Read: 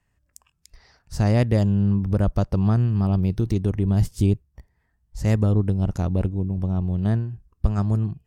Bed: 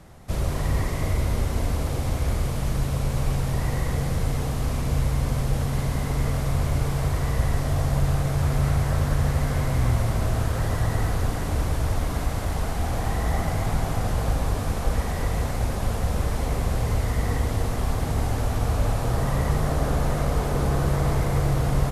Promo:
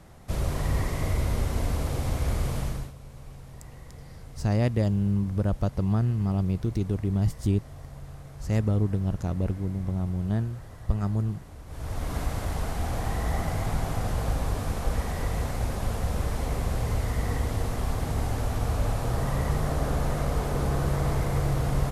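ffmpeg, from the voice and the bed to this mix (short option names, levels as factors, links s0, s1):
-filter_complex "[0:a]adelay=3250,volume=0.562[s0];[1:a]volume=5.01,afade=t=out:st=2.58:d=0.35:silence=0.133352,afade=t=in:st=11.66:d=0.51:silence=0.149624[s1];[s0][s1]amix=inputs=2:normalize=0"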